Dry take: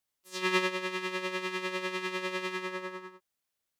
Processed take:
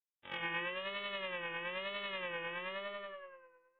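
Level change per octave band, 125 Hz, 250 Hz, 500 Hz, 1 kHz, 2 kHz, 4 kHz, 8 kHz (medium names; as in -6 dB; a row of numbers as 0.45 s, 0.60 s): -9.5 dB, -14.5 dB, -7.5 dB, -7.0 dB, -5.5 dB, -5.0 dB, under -35 dB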